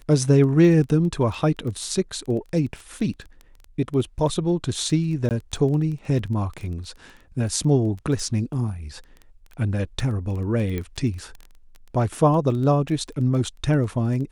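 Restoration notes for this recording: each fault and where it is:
crackle 12/s -30 dBFS
5.29–5.31 gap 18 ms
10.78 pop -16 dBFS

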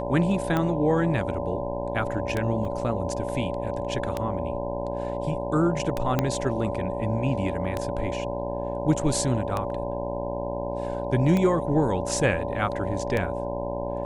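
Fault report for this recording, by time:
buzz 60 Hz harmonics 17 -32 dBFS
tick 33 1/3 rpm -13 dBFS
tone 570 Hz -31 dBFS
2.65 gap 2 ms
6.19 pop -9 dBFS

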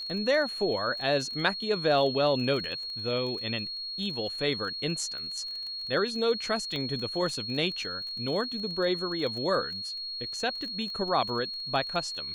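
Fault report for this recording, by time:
crackle 21/s -36 dBFS
tone 4300 Hz -34 dBFS
6.76 pop -22 dBFS

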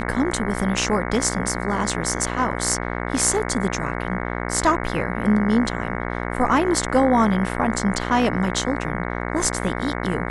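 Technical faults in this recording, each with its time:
buzz 60 Hz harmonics 37 -27 dBFS

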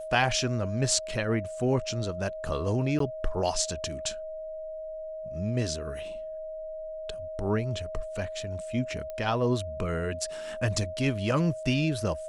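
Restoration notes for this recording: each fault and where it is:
tone 630 Hz -35 dBFS
2.99–3 gap 13 ms
9.1 pop -25 dBFS

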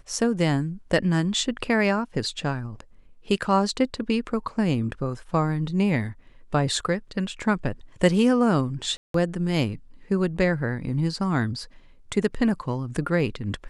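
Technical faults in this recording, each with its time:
8.97–9.14 gap 0.173 s

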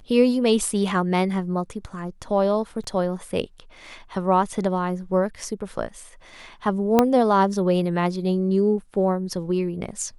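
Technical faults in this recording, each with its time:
2.84 gap 3.5 ms
6.99 pop -3 dBFS

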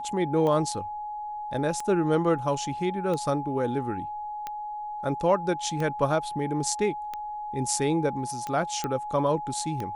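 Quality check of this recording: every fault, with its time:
tick 45 rpm -19 dBFS
tone 840 Hz -32 dBFS
8.84 pop -15 dBFS

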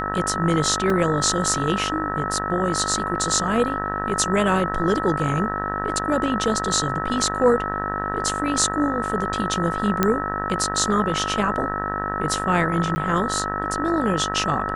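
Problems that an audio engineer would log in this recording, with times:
buzz 50 Hz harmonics 38 -29 dBFS
tone 1300 Hz -27 dBFS
0.9 gap 2.7 ms
10.03 pop -4 dBFS
12.95–12.96 gap 10 ms

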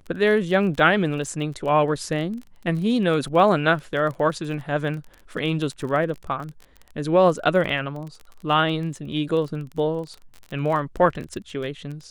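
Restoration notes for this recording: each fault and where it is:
crackle 26/s -31 dBFS

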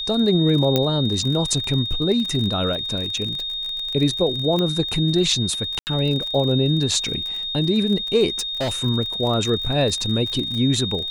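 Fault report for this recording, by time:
crackle 39/s -26 dBFS
tone 3700 Hz -25 dBFS
0.76 pop -5 dBFS
4.59 pop -11 dBFS
5.79–5.87 gap 79 ms
8.39–8.76 clipped -20 dBFS

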